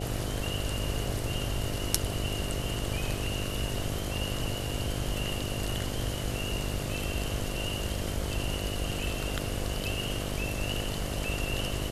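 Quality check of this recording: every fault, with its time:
mains buzz 50 Hz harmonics 14 −36 dBFS

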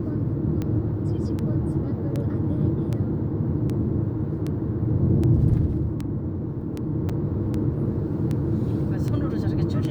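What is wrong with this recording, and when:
scratch tick 78 rpm −17 dBFS
0:07.09–0:07.10: drop-out 5.5 ms

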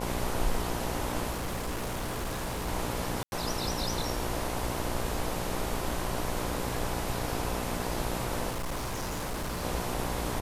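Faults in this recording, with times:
mains buzz 60 Hz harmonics 17 −36 dBFS
0:01.30–0:02.69: clipping −29.5 dBFS
0:03.23–0:03.32: drop-out 91 ms
0:08.49–0:09.64: clipping −30 dBFS

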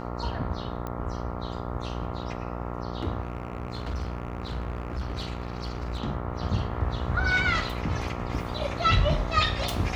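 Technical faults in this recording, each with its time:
mains buzz 60 Hz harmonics 23 −34 dBFS
0:00.87: click −20 dBFS
0:03.22–0:06.00: clipping −27 dBFS

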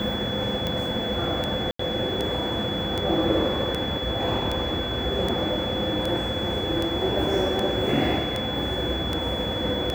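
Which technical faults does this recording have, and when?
scratch tick 78 rpm −13 dBFS
whistle 3,400 Hz −30 dBFS
0:01.71–0:01.79: drop-out 84 ms

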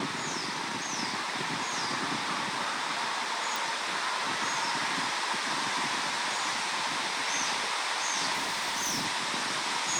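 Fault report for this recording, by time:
0:03.56: click
0:08.33–0:09.06: clipping −27 dBFS

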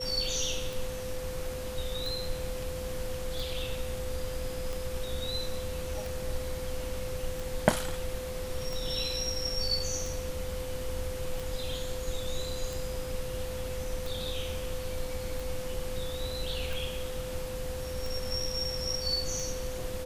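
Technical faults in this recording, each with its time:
scratch tick 45 rpm
whistle 510 Hz −37 dBFS

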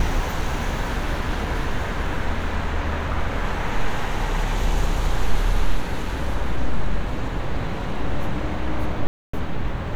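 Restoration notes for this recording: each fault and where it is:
0:09.07–0:09.33: drop-out 264 ms

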